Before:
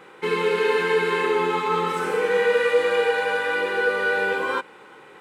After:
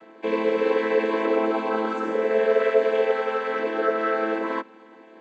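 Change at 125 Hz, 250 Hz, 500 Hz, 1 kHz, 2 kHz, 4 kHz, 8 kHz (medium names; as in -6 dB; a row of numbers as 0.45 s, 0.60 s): no reading, +5.0 dB, 0.0 dB, -2.5 dB, -8.0 dB, -9.0 dB, under -10 dB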